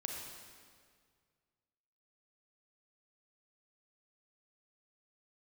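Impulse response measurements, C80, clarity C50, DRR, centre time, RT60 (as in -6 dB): 2.5 dB, 1.0 dB, 0.0 dB, 81 ms, 1.9 s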